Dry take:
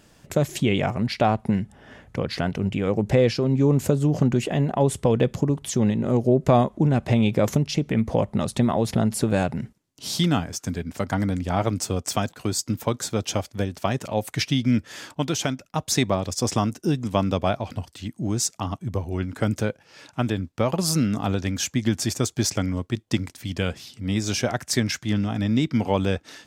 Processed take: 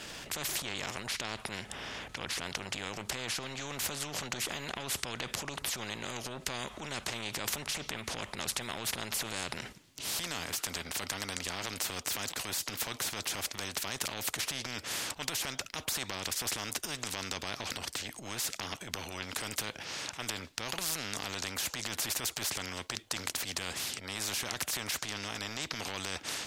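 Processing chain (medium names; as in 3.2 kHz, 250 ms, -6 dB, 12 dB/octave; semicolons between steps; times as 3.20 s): transient shaper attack -9 dB, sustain +4 dB; peaking EQ 3 kHz +9 dB 2.2 oct; in parallel at +3 dB: peak limiter -15.5 dBFS, peak gain reduction 12.5 dB; on the sum: spectrum-flattening compressor 4:1; trim -9 dB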